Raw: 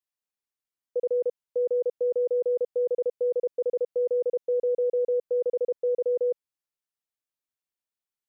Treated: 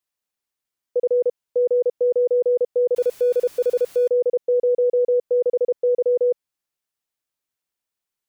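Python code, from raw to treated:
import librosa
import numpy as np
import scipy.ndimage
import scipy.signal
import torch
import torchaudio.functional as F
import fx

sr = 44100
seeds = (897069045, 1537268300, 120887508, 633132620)

y = fx.zero_step(x, sr, step_db=-44.0, at=(2.96, 4.08))
y = y * 10.0 ** (6.5 / 20.0)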